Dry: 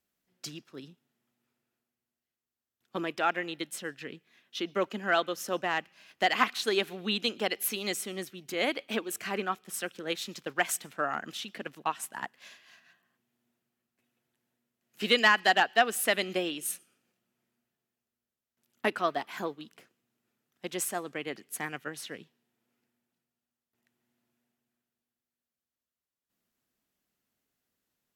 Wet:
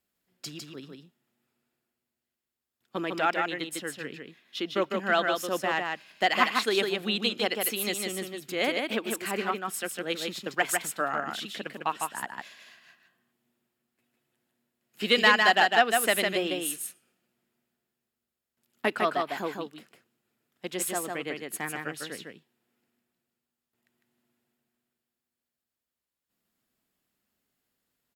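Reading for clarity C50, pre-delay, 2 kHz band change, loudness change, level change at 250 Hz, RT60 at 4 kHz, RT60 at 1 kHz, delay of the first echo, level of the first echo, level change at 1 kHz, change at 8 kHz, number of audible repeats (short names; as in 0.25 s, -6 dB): none, none, +3.0 dB, +3.0 dB, +3.0 dB, none, none, 0.153 s, -4.0 dB, +3.0 dB, +2.5 dB, 1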